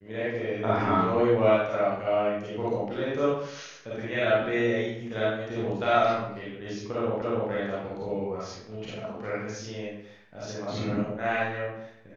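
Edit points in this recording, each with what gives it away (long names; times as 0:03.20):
0:07.22: the same again, the last 0.29 s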